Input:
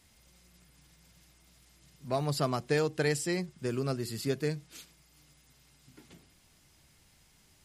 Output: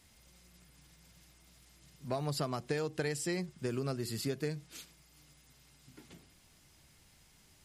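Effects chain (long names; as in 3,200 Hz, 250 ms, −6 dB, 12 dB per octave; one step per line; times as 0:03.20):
downward compressor 6 to 1, threshold −31 dBFS, peak gain reduction 8 dB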